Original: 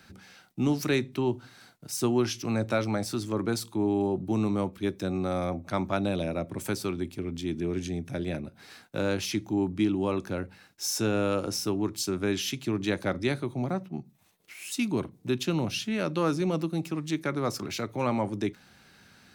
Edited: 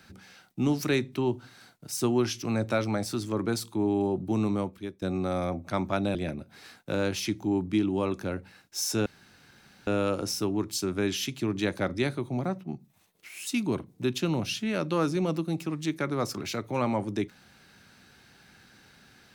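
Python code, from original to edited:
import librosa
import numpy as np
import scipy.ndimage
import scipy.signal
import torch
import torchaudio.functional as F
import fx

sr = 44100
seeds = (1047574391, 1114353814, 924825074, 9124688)

y = fx.edit(x, sr, fx.fade_out_to(start_s=4.53, length_s=0.49, floor_db=-17.5),
    fx.cut(start_s=6.15, length_s=2.06),
    fx.insert_room_tone(at_s=11.12, length_s=0.81), tone=tone)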